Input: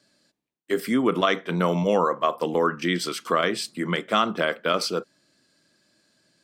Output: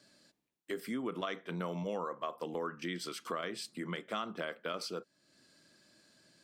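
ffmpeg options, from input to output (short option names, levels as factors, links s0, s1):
-af "acompressor=threshold=0.00398:ratio=2"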